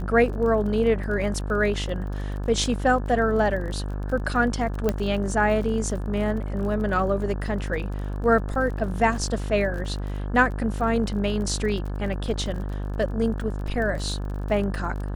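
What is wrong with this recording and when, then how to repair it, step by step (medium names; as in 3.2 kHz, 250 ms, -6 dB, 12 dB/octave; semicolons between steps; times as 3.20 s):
buzz 50 Hz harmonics 35 -29 dBFS
crackle 34 per s -33 dBFS
4.89 s: pop -10 dBFS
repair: de-click; de-hum 50 Hz, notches 35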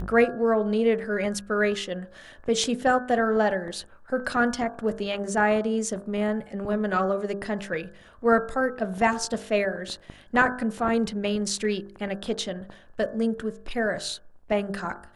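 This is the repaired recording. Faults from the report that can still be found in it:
4.89 s: pop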